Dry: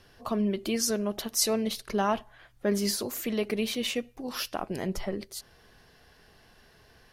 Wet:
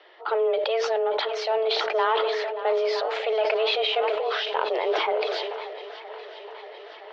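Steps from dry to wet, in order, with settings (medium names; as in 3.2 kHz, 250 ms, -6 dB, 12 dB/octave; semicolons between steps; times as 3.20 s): in parallel at 0 dB: gain riding; on the sum: saturation -16.5 dBFS, distortion -16 dB; on a send: shuffle delay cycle 967 ms, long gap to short 1.5:1, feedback 62%, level -15 dB; on the sum: mistuned SSB +220 Hz 150–3600 Hz; decay stretcher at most 22 dB/s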